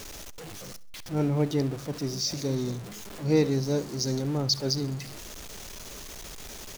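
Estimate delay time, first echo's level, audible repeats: 66 ms, -20.0 dB, 2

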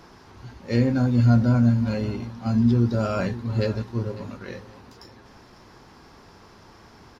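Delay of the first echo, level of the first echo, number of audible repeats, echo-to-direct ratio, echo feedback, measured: 549 ms, -17.0 dB, 2, -16.5 dB, 27%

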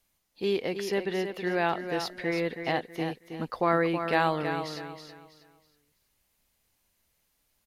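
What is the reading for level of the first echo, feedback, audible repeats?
-8.0 dB, 30%, 3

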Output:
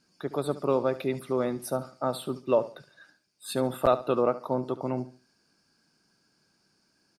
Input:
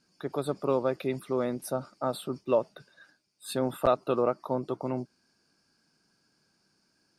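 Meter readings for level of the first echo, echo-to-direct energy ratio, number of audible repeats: -15.5 dB, -15.0 dB, 2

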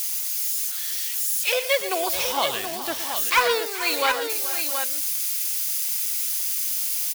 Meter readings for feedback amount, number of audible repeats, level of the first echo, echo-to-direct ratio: no regular repeats, 5, -12.0 dB, -5.0 dB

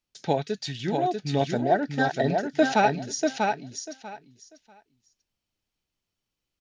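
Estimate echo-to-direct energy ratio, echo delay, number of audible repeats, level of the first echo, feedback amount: -4.0 dB, 642 ms, 3, -4.0 dB, 18%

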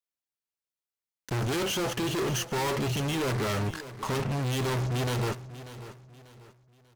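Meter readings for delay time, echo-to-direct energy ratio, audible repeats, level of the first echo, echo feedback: 591 ms, -14.0 dB, 3, -14.5 dB, 35%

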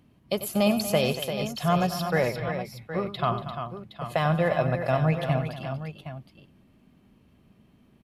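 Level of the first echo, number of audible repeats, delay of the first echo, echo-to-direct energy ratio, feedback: -12.5 dB, 4, 93 ms, -5.0 dB, no regular repeats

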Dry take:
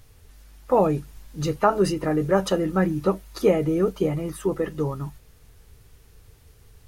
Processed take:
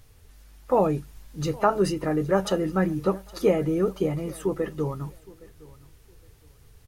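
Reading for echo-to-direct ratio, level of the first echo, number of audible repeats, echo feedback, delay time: -22.0 dB, -22.0 dB, 2, 23%, 815 ms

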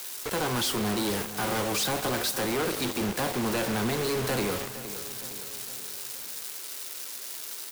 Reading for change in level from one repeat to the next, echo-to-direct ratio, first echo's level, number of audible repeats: -5.0 dB, -12.5 dB, -14.0 dB, 4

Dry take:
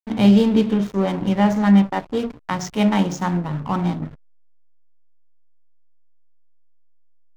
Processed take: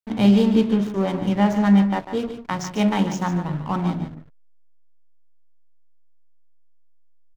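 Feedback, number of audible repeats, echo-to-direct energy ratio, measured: no regular repeats, 1, -10.0 dB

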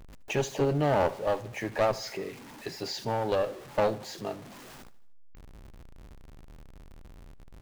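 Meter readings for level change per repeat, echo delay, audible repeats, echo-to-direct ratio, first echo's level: -5.5 dB, 77 ms, 3, -18.0 dB, -19.5 dB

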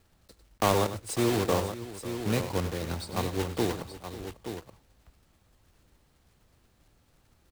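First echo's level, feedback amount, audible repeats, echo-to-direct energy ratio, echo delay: -12.0 dB, no regular repeats, 3, -7.0 dB, 99 ms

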